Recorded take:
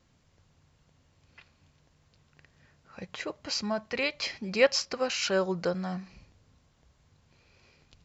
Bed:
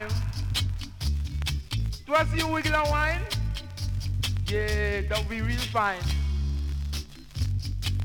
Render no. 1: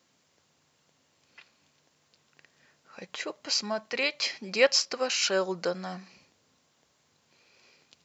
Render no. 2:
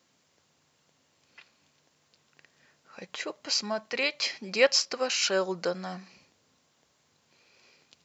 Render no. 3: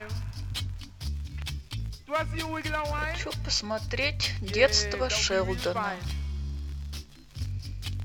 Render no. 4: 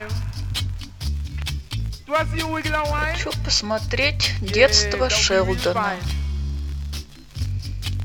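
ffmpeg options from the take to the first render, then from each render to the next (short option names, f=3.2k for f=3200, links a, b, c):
-af "highpass=250,highshelf=f=3.7k:g=7"
-af anull
-filter_complex "[1:a]volume=-6dB[a];[0:a][a]amix=inputs=2:normalize=0"
-af "volume=8dB,alimiter=limit=-1dB:level=0:latency=1"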